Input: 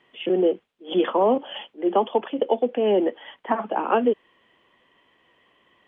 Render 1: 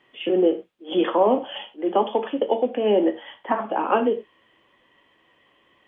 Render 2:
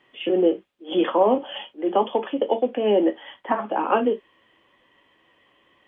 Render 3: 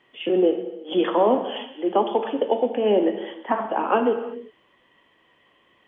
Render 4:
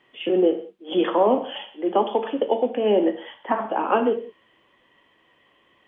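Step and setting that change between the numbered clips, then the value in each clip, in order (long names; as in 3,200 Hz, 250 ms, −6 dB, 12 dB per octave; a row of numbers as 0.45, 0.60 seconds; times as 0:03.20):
reverb whose tail is shaped and stops, gate: 130, 80, 400, 210 milliseconds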